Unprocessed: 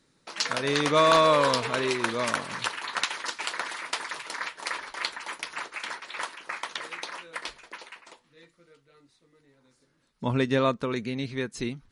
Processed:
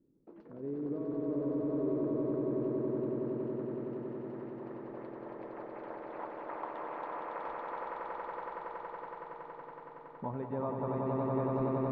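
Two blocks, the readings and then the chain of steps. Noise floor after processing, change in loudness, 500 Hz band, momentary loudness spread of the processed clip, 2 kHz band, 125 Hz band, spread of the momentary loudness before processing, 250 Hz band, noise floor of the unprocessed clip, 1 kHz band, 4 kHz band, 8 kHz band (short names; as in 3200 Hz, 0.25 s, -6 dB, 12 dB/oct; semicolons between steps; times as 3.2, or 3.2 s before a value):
-52 dBFS, -9.5 dB, -7.0 dB, 12 LU, -21.0 dB, -4.5 dB, 16 LU, -2.0 dB, -68 dBFS, -11.0 dB, under -35 dB, under -40 dB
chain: high shelf 6100 Hz -7.5 dB; compressor 3:1, threshold -34 dBFS, peak gain reduction 13 dB; low-pass sweep 340 Hz -> 870 Hz, 3.72–6.58; swelling echo 93 ms, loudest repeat 8, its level -4 dB; gain -6 dB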